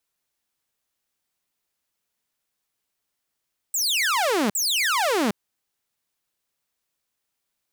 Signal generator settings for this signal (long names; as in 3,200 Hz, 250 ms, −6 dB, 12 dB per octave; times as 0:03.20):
repeated falling chirps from 8,200 Hz, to 190 Hz, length 0.76 s saw, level −17 dB, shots 2, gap 0.05 s